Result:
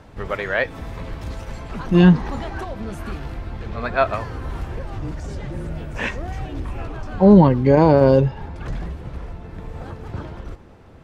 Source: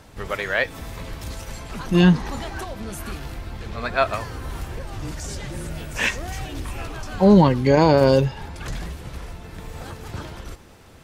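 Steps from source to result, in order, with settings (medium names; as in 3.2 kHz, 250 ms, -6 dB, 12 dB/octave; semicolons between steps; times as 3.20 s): low-pass 1.7 kHz 6 dB/octave, from 4.99 s 1 kHz; trim +3 dB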